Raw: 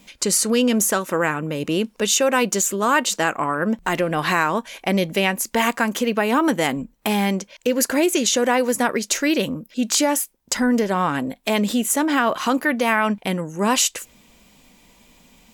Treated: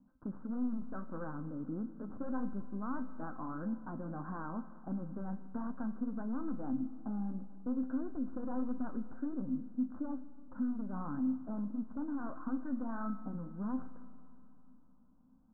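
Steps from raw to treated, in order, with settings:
wavefolder on the positive side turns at −15 dBFS
Butterworth low-pass 1,500 Hz 96 dB per octave
low shelf with overshoot 330 Hz +6.5 dB, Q 3
downward compressor 3 to 1, threshold −15 dBFS, peak gain reduction 7 dB
flanger 1.6 Hz, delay 3.2 ms, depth 7.8 ms, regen −61%
tuned comb filter 260 Hz, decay 0.41 s, harmonics all, mix 70%
four-comb reverb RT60 3.1 s, combs from 28 ms, DRR 13 dB
level −8 dB

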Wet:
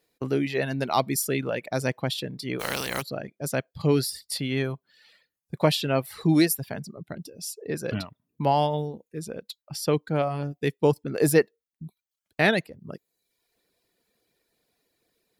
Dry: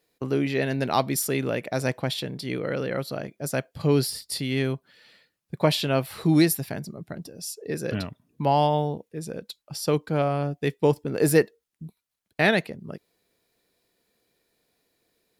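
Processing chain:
0:02.59–0:03.01: compressing power law on the bin magnitudes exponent 0.34
reverb reduction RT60 0.74 s

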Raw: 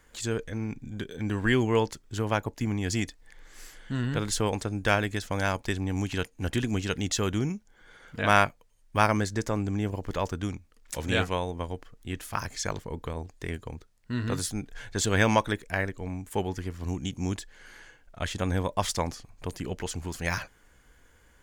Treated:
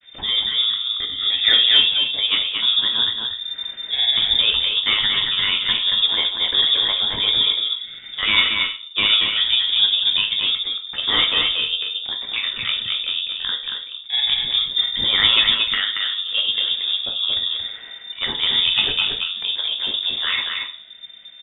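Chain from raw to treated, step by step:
granular cloud 81 ms, grains 20 per second, spray 16 ms, pitch spread up and down by 0 semitones
in parallel at −12 dB: sine wavefolder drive 15 dB, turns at −4.5 dBFS
on the sum: single-tap delay 229 ms −4.5 dB
rectangular room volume 47 cubic metres, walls mixed, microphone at 0.47 metres
voice inversion scrambler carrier 3,600 Hz
level −2 dB

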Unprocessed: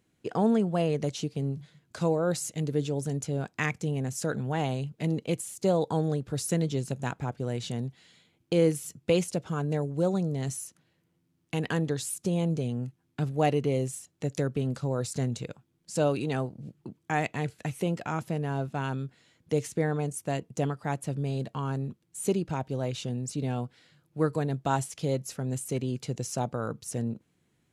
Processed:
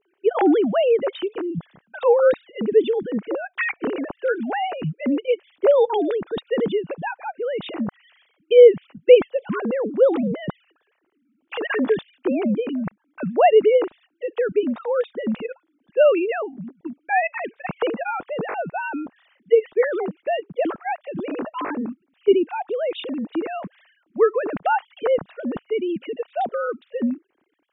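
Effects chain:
three sine waves on the formant tracks
level +8.5 dB

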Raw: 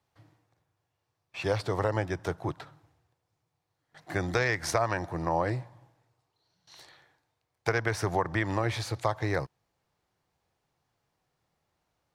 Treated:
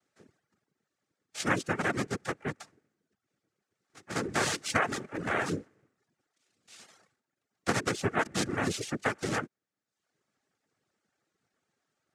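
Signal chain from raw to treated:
cochlear-implant simulation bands 3
reverb reduction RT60 0.68 s
notch filter 1,000 Hz, Q 6.7

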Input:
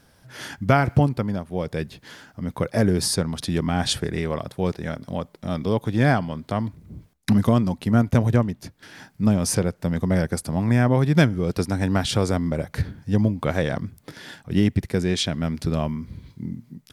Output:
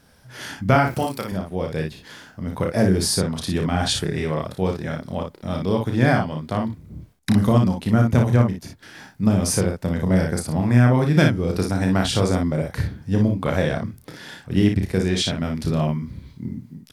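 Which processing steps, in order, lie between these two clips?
0:00.87–0:01.32: RIAA equalisation recording
on a send: ambience of single reflections 32 ms −5.5 dB, 58 ms −5.5 dB

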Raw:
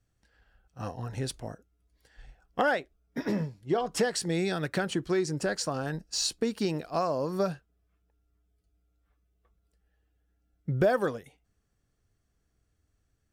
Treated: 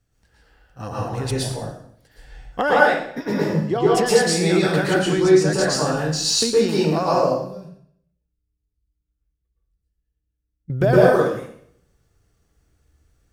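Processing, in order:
0:07.21–0:10.70: guitar amp tone stack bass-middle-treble 10-0-1
convolution reverb RT60 0.65 s, pre-delay 108 ms, DRR −6.5 dB
level +4 dB

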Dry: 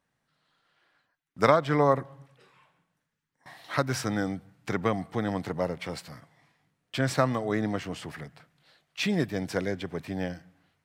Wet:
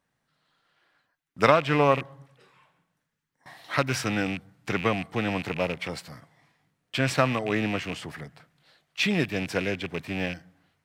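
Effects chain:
loose part that buzzes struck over −35 dBFS, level −27 dBFS
dynamic equaliser 2,600 Hz, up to +5 dB, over −43 dBFS, Q 1.1
level +1 dB

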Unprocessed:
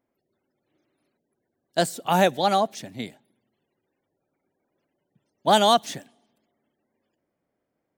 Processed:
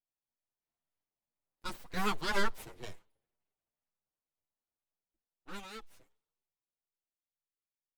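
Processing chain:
source passing by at 0:02.51, 25 m/s, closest 7.9 metres
full-wave rectification
barber-pole flanger 7.5 ms +2 Hz
level −3 dB

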